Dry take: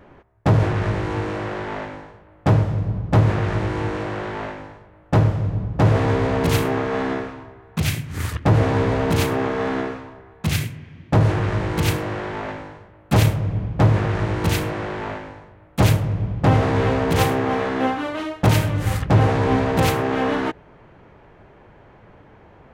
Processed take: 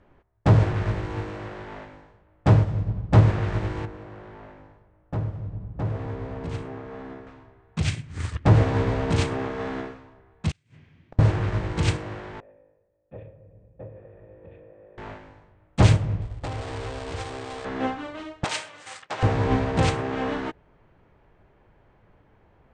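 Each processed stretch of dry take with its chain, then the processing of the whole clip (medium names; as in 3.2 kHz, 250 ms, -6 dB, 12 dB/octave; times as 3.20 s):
3.85–7.27 s: treble shelf 2.3 kHz -9.5 dB + compression 1.5:1, threshold -32 dBFS
10.51–11.19 s: low-pass 11 kHz + bass shelf 170 Hz -6.5 dB + inverted gate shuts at -17 dBFS, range -33 dB
12.40–14.98 s: cascade formant filter e + peaking EQ 2 kHz -13.5 dB 0.66 oct
16.21–17.65 s: dead-time distortion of 0.2 ms + peaking EQ 180 Hz -14 dB 0.96 oct + compression 4:1, threshold -21 dBFS
18.44–19.23 s: expander -22 dBFS + high-pass 700 Hz + treble shelf 2.3 kHz +6 dB
whole clip: elliptic low-pass 8.6 kHz, stop band 40 dB; bass shelf 61 Hz +10.5 dB; upward expansion 1.5:1, over -32 dBFS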